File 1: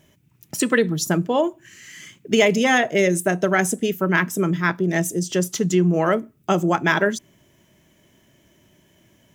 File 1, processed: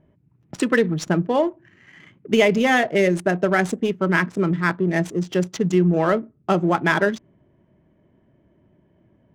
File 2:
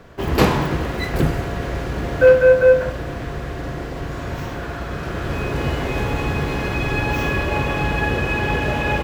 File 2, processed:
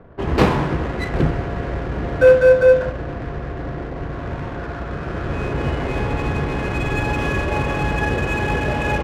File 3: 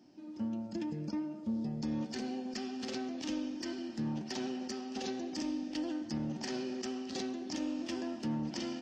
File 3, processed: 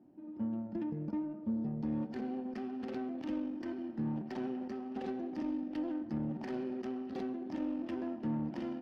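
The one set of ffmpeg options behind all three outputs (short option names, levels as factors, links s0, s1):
-af "adynamicsmooth=sensitivity=5.5:basefreq=1100,aemphasis=mode=reproduction:type=cd"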